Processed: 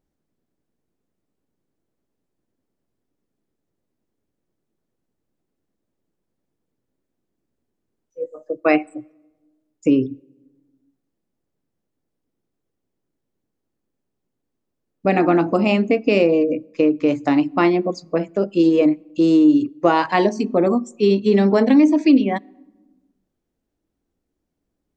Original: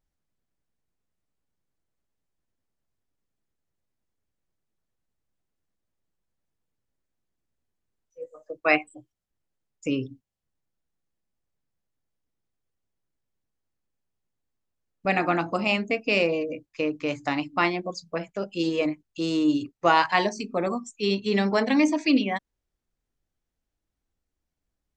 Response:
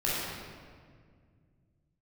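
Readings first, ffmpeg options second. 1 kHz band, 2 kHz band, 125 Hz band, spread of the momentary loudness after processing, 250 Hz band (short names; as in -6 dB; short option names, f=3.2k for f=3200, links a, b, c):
+3.0 dB, -0.5 dB, +8.0 dB, 10 LU, +10.0 dB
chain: -filter_complex "[0:a]equalizer=f=310:w=0.54:g=14,acompressor=threshold=-12dB:ratio=2.5,asplit=2[a][b];[1:a]atrim=start_sample=2205,asetrate=83790,aresample=44100[c];[b][c]afir=irnorm=-1:irlink=0,volume=-33.5dB[d];[a][d]amix=inputs=2:normalize=0"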